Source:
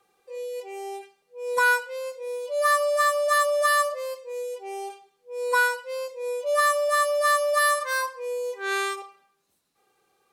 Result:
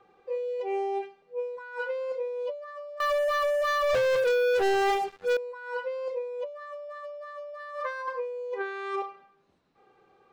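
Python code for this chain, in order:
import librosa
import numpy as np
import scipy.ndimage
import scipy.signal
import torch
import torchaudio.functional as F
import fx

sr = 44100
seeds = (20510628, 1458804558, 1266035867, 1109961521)

y = fx.spacing_loss(x, sr, db_at_10k=34)
y = fx.over_compress(y, sr, threshold_db=-38.0, ratio=-1.0)
y = fx.leveller(y, sr, passes=5, at=(3.0, 5.37))
y = F.gain(torch.from_numpy(y), 2.5).numpy()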